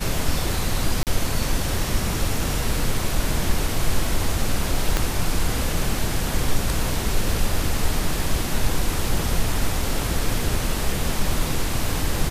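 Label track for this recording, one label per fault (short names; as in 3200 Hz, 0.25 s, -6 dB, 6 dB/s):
1.030000	1.070000	gap 38 ms
4.970000	4.970000	pop -6 dBFS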